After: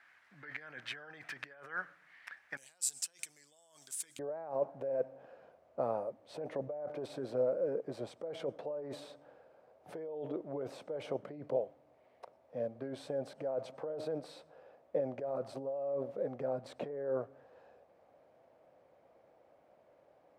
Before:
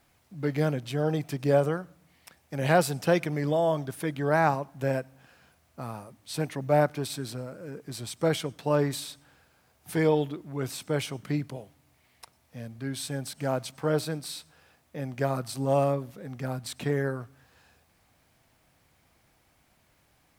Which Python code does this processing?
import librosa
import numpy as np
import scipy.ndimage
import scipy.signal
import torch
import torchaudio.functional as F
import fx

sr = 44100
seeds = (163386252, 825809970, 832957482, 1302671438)

y = fx.over_compress(x, sr, threshold_db=-35.0, ratio=-1.0)
y = fx.bandpass_q(y, sr, hz=fx.steps((0.0, 1700.0), (2.57, 7700.0), (4.19, 550.0)), q=4.0)
y = y * librosa.db_to_amplitude(7.0)